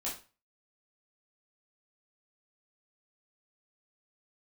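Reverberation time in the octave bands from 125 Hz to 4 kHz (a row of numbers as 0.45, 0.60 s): 0.40, 0.35, 0.35, 0.35, 0.30, 0.30 s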